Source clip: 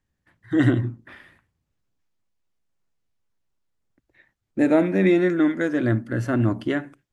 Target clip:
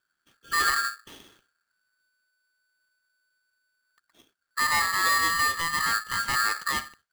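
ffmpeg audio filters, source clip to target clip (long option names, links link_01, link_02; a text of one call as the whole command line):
ffmpeg -i in.wav -filter_complex "[0:a]asplit=2[link_01][link_02];[link_02]alimiter=limit=-18dB:level=0:latency=1:release=18,volume=1dB[link_03];[link_01][link_03]amix=inputs=2:normalize=0,aeval=exprs='clip(val(0),-1,0.299)':channel_layout=same,aeval=exprs='val(0)*sgn(sin(2*PI*1500*n/s))':channel_layout=same,volume=-9dB" out.wav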